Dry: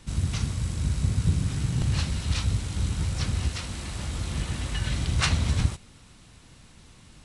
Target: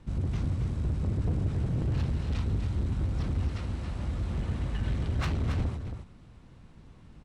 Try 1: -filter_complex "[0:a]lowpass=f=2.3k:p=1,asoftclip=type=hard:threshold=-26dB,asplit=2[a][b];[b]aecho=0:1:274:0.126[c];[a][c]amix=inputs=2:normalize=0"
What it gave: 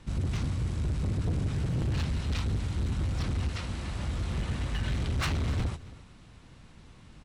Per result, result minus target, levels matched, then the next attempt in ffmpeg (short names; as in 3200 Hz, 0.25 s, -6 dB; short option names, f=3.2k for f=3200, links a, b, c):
echo-to-direct -10.5 dB; 2000 Hz band +5.0 dB
-filter_complex "[0:a]lowpass=f=2.3k:p=1,asoftclip=type=hard:threshold=-26dB,asplit=2[a][b];[b]aecho=0:1:274:0.422[c];[a][c]amix=inputs=2:normalize=0"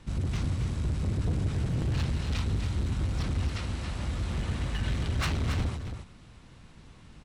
2000 Hz band +5.0 dB
-filter_complex "[0:a]lowpass=f=760:p=1,asoftclip=type=hard:threshold=-26dB,asplit=2[a][b];[b]aecho=0:1:274:0.422[c];[a][c]amix=inputs=2:normalize=0"